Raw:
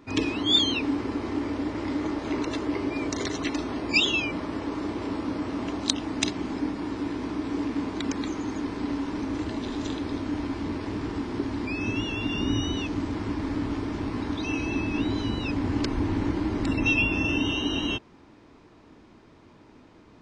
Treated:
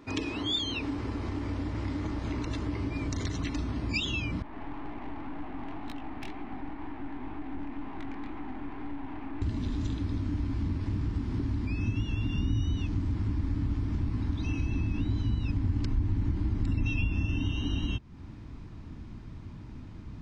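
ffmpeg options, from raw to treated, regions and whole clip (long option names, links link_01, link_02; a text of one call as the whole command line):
ffmpeg -i in.wav -filter_complex "[0:a]asettb=1/sr,asplit=3[link_01][link_02][link_03];[link_01]atrim=end=4.424[link_04];[link_02]atrim=start=4.42:end=9.42,asetpts=PTS-STARTPTS,afade=type=in:duration=0.004:curve=qsin,afade=type=out:start_time=4.996:duration=0.004:curve=qsin,highpass=frequency=300:width=0.5412,highpass=frequency=300:width=1.3066,equalizer=frequency=320:width_type=q:width=4:gain=-3,equalizer=frequency=510:width_type=q:width=4:gain=-9,equalizer=frequency=770:width_type=q:width=4:gain=10,equalizer=frequency=1400:width_type=q:width=4:gain=-3,lowpass=frequency=2500:width=0.5412,lowpass=frequency=2500:width=1.3066,flanger=delay=17:depth=8:speed=2,aeval=exprs='(tanh(56.2*val(0)+0.25)-tanh(0.25))/56.2':channel_layout=same[link_05];[link_03]atrim=start=9.416[link_06];[link_04][link_05]acrossfade=duration=0.004:curve1=hsin:curve2=qsin[link_07];[link_07][link_06]acrossfade=duration=0.004:curve1=qsin:curve2=hsin,asubboost=boost=10.5:cutoff=140,acompressor=threshold=-32dB:ratio=2.5" out.wav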